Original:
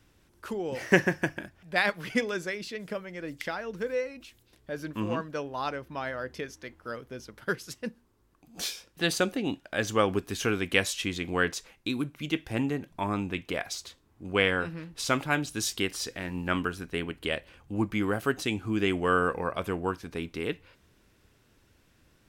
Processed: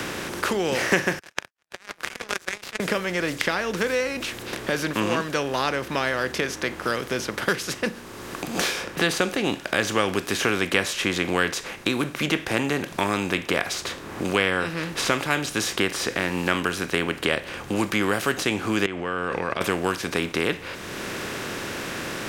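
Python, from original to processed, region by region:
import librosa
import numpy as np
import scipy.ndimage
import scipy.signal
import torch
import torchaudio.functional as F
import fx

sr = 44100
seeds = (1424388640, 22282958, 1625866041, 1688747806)

y = fx.chain(x, sr, fx.highpass(hz=960.0, slope=12),
    fx.over_compress(threshold_db=-35.0, ratio=-0.5),
    fx.power_curve(exponent=3.0), at=(1.19, 2.8))
y = fx.chain(y, sr, fx.lowpass(hz=2700.0, slope=12),
    fx.level_steps(step_db=21), at=(18.86, 19.61))
y = fx.bin_compress(y, sr, power=0.6)
y = fx.low_shelf(y, sr, hz=350.0, db=-5.0)
y = fx.band_squash(y, sr, depth_pct=70)
y = y * librosa.db_to_amplitude(3.0)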